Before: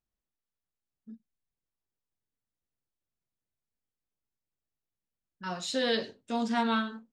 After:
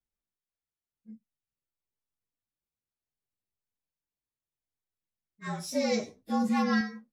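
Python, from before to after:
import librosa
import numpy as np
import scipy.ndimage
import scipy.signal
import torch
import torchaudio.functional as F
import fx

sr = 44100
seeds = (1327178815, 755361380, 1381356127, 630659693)

y = fx.partial_stretch(x, sr, pct=112)
y = fx.low_shelf(y, sr, hz=440.0, db=6.0, at=(5.47, 6.81))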